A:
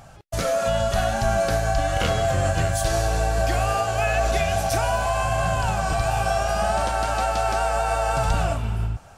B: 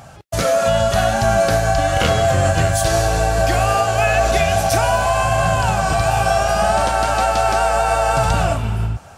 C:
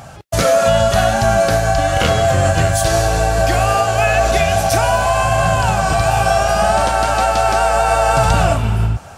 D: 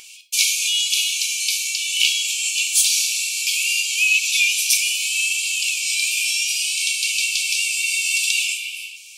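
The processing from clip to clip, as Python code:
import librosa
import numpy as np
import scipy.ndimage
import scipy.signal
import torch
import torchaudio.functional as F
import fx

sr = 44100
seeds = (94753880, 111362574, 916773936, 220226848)

y1 = scipy.signal.sosfilt(scipy.signal.butter(2, 61.0, 'highpass', fs=sr, output='sos'), x)
y1 = y1 * librosa.db_to_amplitude(6.5)
y2 = fx.rider(y1, sr, range_db=4, speed_s=2.0)
y2 = y2 * librosa.db_to_amplitude(2.0)
y3 = fx.brickwall_highpass(y2, sr, low_hz=2200.0)
y3 = fx.rev_gated(y3, sr, seeds[0], gate_ms=130, shape='falling', drr_db=5.5)
y3 = y3 * librosa.db_to_amplitude(5.5)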